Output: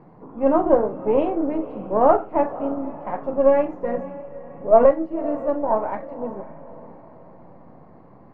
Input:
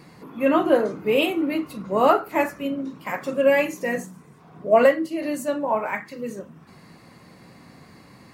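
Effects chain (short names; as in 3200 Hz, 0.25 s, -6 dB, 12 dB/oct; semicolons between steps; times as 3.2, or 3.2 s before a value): half-wave gain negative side -7 dB; synth low-pass 820 Hz, resonance Q 1.6; diffused feedback echo 0.551 s, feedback 44%, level -16 dB; gain +1.5 dB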